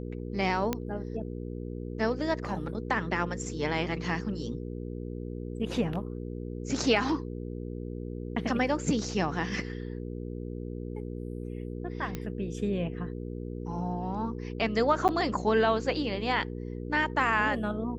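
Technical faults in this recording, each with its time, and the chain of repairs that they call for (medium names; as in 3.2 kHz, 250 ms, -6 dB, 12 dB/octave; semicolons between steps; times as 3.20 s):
hum 60 Hz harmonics 8 -37 dBFS
0.73 s: pop -14 dBFS
12.15 s: pop -19 dBFS
15.08–15.09 s: dropout 8.6 ms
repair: de-click; de-hum 60 Hz, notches 8; interpolate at 15.08 s, 8.6 ms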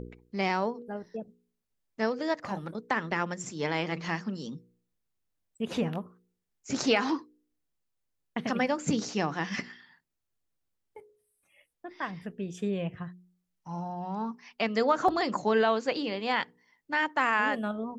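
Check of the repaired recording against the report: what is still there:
nothing left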